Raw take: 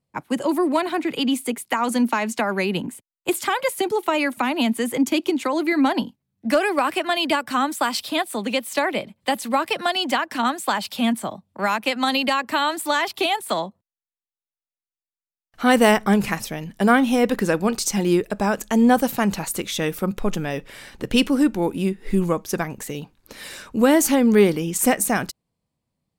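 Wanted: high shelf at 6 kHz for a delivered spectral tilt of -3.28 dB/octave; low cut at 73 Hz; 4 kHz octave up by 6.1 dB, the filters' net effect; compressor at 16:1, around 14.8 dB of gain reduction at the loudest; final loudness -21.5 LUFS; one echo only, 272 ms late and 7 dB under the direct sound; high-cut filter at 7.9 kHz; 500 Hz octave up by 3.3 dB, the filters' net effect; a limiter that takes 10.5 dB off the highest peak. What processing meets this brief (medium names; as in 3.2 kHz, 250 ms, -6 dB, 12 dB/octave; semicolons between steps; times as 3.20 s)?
high-pass 73 Hz; low-pass 7.9 kHz; peaking EQ 500 Hz +4 dB; peaking EQ 4 kHz +5.5 dB; treble shelf 6 kHz +9 dB; compression 16:1, threshold -23 dBFS; peak limiter -18.5 dBFS; delay 272 ms -7 dB; trim +7 dB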